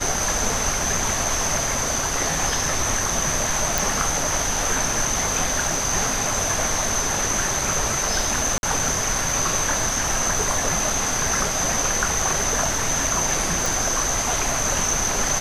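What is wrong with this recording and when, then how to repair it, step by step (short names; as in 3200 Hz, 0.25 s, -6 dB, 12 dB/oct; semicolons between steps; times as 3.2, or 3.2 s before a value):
3.78 pop
8.58–8.63 gap 51 ms
13.66 pop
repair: de-click; interpolate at 8.58, 51 ms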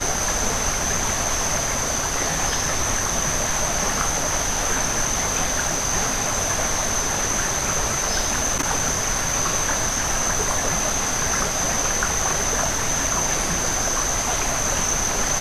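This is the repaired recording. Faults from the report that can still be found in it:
none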